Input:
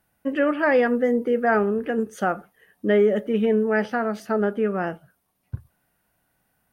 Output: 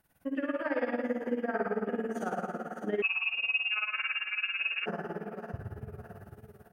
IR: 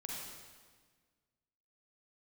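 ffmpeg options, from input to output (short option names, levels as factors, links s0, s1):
-filter_complex "[0:a]aecho=1:1:601|1202|1803:0.158|0.0523|0.0173[s0];[1:a]atrim=start_sample=2205[s1];[s0][s1]afir=irnorm=-1:irlink=0,tremolo=f=18:d=0.8,acompressor=threshold=0.00501:ratio=2,asettb=1/sr,asplit=3[s2][s3][s4];[s2]atrim=end=3.024[s5];[s3]atrim=start=3.02:end=4.86,asetpts=PTS-STARTPTS,afade=t=in:d=0.004:c=qsin,afade=t=out:st=1.836:d=0.004:c=qsin,lowpass=f=2600:t=q:w=0.5098,lowpass=f=2600:t=q:w=0.6013,lowpass=f=2600:t=q:w=0.9,lowpass=f=2600:t=q:w=2.563,afreqshift=-3000[s6];[s4]atrim=start=4.856[s7];[s5][s6]acrossfade=d=0.004:c1=hsin:c2=qsin[s8];[s8][s7]acrossfade=d=0.004:c1=qsin:c2=hsin,volume=2"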